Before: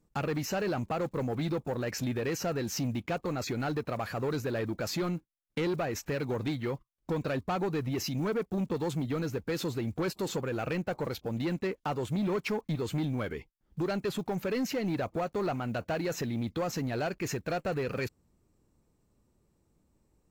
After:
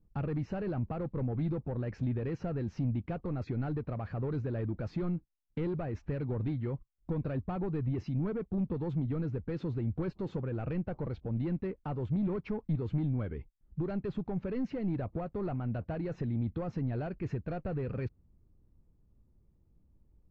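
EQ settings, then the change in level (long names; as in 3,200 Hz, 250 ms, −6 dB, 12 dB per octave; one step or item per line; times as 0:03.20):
high-frequency loss of the air 170 metres
RIAA equalisation playback
−8.5 dB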